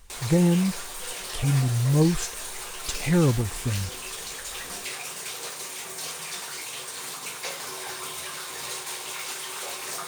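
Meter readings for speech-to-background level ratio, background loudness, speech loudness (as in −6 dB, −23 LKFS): 9.0 dB, −33.0 LKFS, −24.0 LKFS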